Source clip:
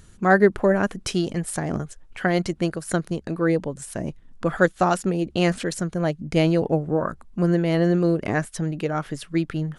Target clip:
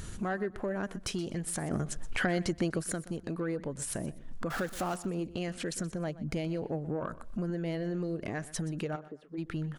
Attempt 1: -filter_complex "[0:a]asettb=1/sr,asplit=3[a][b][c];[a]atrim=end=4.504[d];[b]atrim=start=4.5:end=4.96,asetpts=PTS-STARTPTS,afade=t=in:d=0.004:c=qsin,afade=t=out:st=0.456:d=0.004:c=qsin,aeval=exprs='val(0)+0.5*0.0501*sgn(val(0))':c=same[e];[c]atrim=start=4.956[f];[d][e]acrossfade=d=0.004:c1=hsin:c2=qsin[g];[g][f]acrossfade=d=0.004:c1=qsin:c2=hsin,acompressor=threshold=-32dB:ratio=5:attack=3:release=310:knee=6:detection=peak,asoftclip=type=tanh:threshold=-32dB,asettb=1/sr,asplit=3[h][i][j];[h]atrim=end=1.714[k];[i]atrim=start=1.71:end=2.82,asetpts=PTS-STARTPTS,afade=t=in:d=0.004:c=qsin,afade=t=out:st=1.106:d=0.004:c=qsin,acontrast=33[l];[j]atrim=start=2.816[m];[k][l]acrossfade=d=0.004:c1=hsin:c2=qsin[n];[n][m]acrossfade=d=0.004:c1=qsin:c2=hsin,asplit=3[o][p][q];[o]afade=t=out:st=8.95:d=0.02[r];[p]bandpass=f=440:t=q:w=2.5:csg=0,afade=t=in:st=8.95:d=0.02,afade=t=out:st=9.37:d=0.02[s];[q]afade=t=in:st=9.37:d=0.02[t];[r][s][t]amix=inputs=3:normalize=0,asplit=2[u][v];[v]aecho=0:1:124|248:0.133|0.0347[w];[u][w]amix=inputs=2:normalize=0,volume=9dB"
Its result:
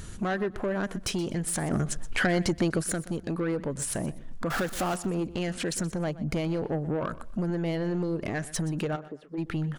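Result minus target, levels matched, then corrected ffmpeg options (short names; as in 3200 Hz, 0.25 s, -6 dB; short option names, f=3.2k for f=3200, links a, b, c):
compressor: peak gain reduction -7 dB
-filter_complex "[0:a]asettb=1/sr,asplit=3[a][b][c];[a]atrim=end=4.504[d];[b]atrim=start=4.5:end=4.96,asetpts=PTS-STARTPTS,afade=t=in:d=0.004:c=qsin,afade=t=out:st=0.456:d=0.004:c=qsin,aeval=exprs='val(0)+0.5*0.0501*sgn(val(0))':c=same[e];[c]atrim=start=4.956[f];[d][e]acrossfade=d=0.004:c1=hsin:c2=qsin[g];[g][f]acrossfade=d=0.004:c1=qsin:c2=hsin,acompressor=threshold=-40.5dB:ratio=5:attack=3:release=310:knee=6:detection=peak,asoftclip=type=tanh:threshold=-32dB,asettb=1/sr,asplit=3[h][i][j];[h]atrim=end=1.714[k];[i]atrim=start=1.71:end=2.82,asetpts=PTS-STARTPTS,afade=t=in:d=0.004:c=qsin,afade=t=out:st=1.106:d=0.004:c=qsin,acontrast=33[l];[j]atrim=start=2.816[m];[k][l]acrossfade=d=0.004:c1=hsin:c2=qsin[n];[n][m]acrossfade=d=0.004:c1=qsin:c2=hsin,asplit=3[o][p][q];[o]afade=t=out:st=8.95:d=0.02[r];[p]bandpass=f=440:t=q:w=2.5:csg=0,afade=t=in:st=8.95:d=0.02,afade=t=out:st=9.37:d=0.02[s];[q]afade=t=in:st=9.37:d=0.02[t];[r][s][t]amix=inputs=3:normalize=0,asplit=2[u][v];[v]aecho=0:1:124|248:0.133|0.0347[w];[u][w]amix=inputs=2:normalize=0,volume=9dB"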